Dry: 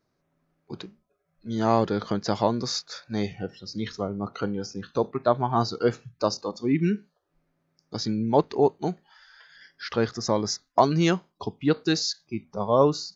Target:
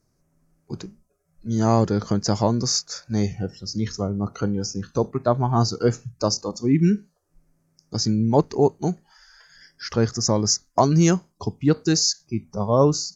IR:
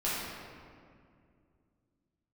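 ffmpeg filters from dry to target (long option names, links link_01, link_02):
-af "aexciter=amount=11.5:drive=7:freq=5500,aemphasis=mode=reproduction:type=bsi"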